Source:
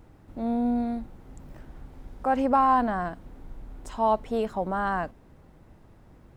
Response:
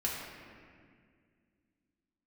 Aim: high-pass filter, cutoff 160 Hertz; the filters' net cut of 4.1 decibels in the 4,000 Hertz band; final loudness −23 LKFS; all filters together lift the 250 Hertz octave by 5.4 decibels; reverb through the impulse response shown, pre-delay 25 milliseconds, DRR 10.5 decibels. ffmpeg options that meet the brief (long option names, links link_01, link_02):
-filter_complex "[0:a]highpass=160,equalizer=frequency=250:width_type=o:gain=6.5,equalizer=frequency=4000:width_type=o:gain=-6,asplit=2[link_01][link_02];[1:a]atrim=start_sample=2205,adelay=25[link_03];[link_02][link_03]afir=irnorm=-1:irlink=0,volume=-15.5dB[link_04];[link_01][link_04]amix=inputs=2:normalize=0,volume=1dB"